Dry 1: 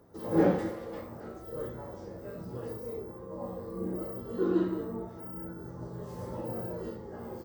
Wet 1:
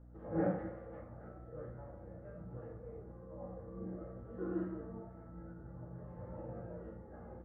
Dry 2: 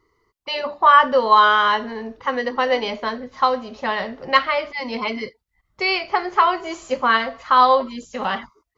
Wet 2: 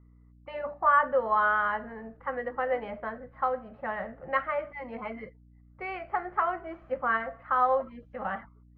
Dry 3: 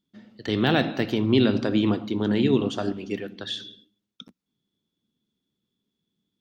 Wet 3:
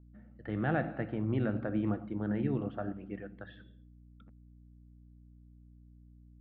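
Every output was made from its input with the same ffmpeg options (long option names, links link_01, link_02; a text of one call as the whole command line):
ffmpeg -i in.wav -af "equalizer=frequency=250:width_type=o:width=0.33:gain=-9,equalizer=frequency=400:width_type=o:width=0.33:gain=-11,equalizer=frequency=1000:width_type=o:width=0.33:gain=-10,aeval=exprs='val(0)+0.00355*(sin(2*PI*60*n/s)+sin(2*PI*2*60*n/s)/2+sin(2*PI*3*60*n/s)/3+sin(2*PI*4*60*n/s)/4+sin(2*PI*5*60*n/s)/5)':channel_layout=same,lowpass=frequency=1700:width=0.5412,lowpass=frequency=1700:width=1.3066,volume=-6dB" out.wav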